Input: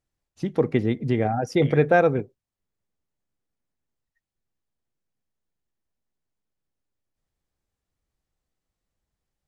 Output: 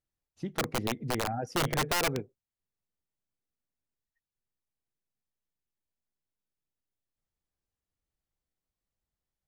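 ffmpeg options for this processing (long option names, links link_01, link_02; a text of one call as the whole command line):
ffmpeg -i in.wav -af "aeval=exprs='(mod(4.73*val(0)+1,2)-1)/4.73':channel_layout=same,volume=-8.5dB" out.wav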